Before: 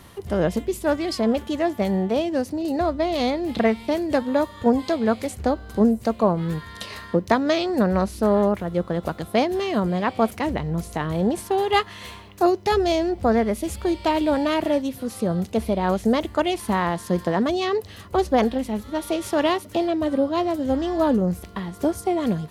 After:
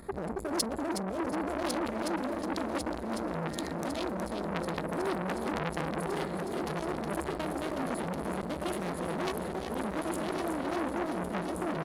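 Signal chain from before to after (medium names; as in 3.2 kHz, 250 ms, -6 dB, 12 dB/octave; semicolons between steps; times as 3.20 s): local Wiener filter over 15 samples; reverberation RT60 0.65 s, pre-delay 4 ms, DRR 16 dB; spectral selection erased 8.84–9.86 s, 600–7600 Hz; tempo 1.9×; fifteen-band graphic EQ 100 Hz -10 dB, 1 kHz -9 dB, 10 kHz +11 dB; compressor with a negative ratio -29 dBFS, ratio -1; treble shelf 7.5 kHz +7 dB; multi-head delay 367 ms, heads first and third, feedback 74%, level -8 dB; transformer saturation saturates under 3.3 kHz; trim -1.5 dB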